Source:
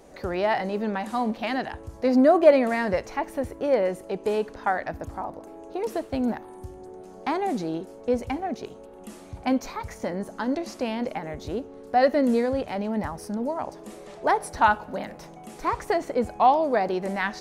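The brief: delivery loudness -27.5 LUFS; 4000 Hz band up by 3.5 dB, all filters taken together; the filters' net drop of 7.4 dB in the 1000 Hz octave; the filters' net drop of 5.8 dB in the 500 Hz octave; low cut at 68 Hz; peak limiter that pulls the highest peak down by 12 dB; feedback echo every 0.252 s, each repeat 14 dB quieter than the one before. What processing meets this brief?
HPF 68 Hz; bell 500 Hz -4.5 dB; bell 1000 Hz -8.5 dB; bell 4000 Hz +5 dB; limiter -22 dBFS; feedback echo 0.252 s, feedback 20%, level -14 dB; gain +5.5 dB

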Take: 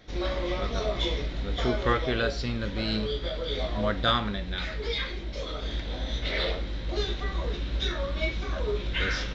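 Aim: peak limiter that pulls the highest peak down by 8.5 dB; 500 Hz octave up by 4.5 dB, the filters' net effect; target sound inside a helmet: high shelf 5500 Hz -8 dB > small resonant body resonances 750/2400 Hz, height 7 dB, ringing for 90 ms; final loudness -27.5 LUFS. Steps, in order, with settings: bell 500 Hz +5.5 dB; limiter -18 dBFS; high shelf 5500 Hz -8 dB; small resonant body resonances 750/2400 Hz, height 7 dB, ringing for 90 ms; gain +2.5 dB

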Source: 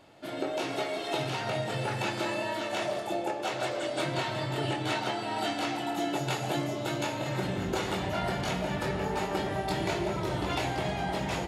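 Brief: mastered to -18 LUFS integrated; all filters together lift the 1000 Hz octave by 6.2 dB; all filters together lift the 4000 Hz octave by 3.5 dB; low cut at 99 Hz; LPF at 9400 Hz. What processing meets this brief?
HPF 99 Hz; LPF 9400 Hz; bell 1000 Hz +8 dB; bell 4000 Hz +4 dB; gain +10.5 dB

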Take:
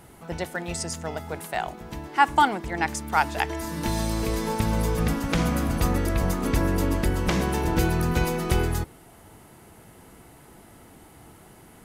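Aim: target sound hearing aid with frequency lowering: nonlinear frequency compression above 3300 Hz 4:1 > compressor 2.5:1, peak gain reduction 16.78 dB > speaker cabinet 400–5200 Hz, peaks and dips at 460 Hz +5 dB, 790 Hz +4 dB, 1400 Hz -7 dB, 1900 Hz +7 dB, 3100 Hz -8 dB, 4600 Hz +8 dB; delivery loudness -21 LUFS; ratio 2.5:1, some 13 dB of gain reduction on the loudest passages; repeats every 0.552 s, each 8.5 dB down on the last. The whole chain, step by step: compressor 2.5:1, threshold -34 dBFS; feedback echo 0.552 s, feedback 38%, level -8.5 dB; nonlinear frequency compression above 3300 Hz 4:1; compressor 2.5:1, threshold -51 dBFS; speaker cabinet 400–5200 Hz, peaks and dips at 460 Hz +5 dB, 790 Hz +4 dB, 1400 Hz -7 dB, 1900 Hz +7 dB, 3100 Hz -8 dB, 4600 Hz +8 dB; gain +27 dB

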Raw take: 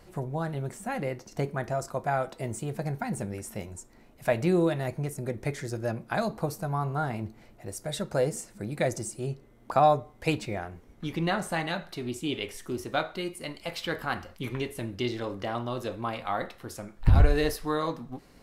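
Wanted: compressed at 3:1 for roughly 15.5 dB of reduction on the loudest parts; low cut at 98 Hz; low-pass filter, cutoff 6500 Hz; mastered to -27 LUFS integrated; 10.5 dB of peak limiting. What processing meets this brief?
HPF 98 Hz; LPF 6500 Hz; compressor 3:1, threshold -38 dBFS; gain +15.5 dB; limiter -14.5 dBFS

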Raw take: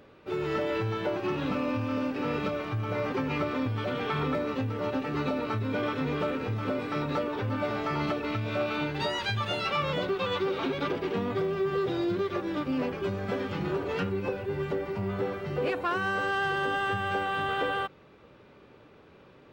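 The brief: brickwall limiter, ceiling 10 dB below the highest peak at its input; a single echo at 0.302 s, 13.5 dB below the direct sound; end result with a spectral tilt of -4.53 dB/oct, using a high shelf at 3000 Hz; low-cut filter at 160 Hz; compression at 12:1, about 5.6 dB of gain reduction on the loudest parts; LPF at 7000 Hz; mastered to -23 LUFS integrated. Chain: HPF 160 Hz; LPF 7000 Hz; high shelf 3000 Hz -6 dB; compressor 12:1, threshold -31 dBFS; limiter -32.5 dBFS; echo 0.302 s -13.5 dB; gain +17 dB

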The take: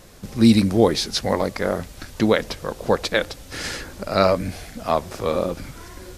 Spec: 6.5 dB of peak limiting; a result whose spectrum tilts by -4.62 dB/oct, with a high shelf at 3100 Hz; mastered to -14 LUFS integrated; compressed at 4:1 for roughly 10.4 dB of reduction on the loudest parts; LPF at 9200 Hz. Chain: LPF 9200 Hz; high shelf 3100 Hz -5.5 dB; compressor 4:1, threshold -22 dBFS; gain +16.5 dB; limiter 0 dBFS

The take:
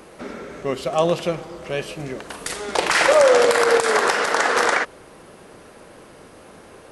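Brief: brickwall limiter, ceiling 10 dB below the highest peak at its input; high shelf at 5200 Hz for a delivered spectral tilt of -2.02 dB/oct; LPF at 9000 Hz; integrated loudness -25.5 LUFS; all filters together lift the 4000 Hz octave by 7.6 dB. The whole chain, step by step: LPF 9000 Hz; bell 4000 Hz +6 dB; high shelf 5200 Hz +8.5 dB; gain -4 dB; limiter -14 dBFS

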